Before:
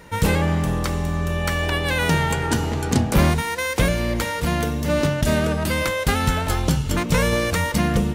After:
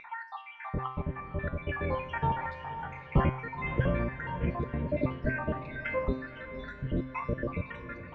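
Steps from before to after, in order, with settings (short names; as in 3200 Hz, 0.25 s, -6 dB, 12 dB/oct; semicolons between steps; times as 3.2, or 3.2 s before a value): random spectral dropouts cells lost 79%; LPF 2300 Hz 24 dB/oct; upward compressor, threshold -34 dBFS; resonator 130 Hz, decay 0.6 s, harmonics all, mix 80%; on a send: diffused feedback echo 0.529 s, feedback 45%, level -11 dB; on the sum: gain +5 dB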